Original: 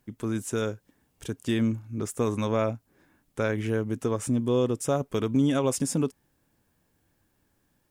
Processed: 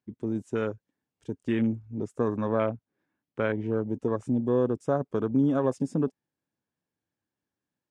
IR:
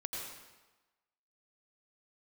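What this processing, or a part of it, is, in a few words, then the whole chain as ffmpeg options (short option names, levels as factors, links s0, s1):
over-cleaned archive recording: -filter_complex "[0:a]highpass=120,lowpass=6800,afwtdn=0.0158,asettb=1/sr,asplit=3[s0][s1][s2];[s0]atrim=end=2.284[s3];[s1]atrim=start=2.28:end=3.77,asetpts=PTS-STARTPTS,afade=t=in:d=0.004:c=qsin,afade=t=out:st=1.486:d=0.004:c=qsin,lowpass=5100[s4];[s2]atrim=start=3.766[s5];[s3][s4]acrossfade=d=0.004:c1=hsin:c2=qsin[s6];[s6][s5]acrossfade=d=0.004:c1=qsin:c2=hsin"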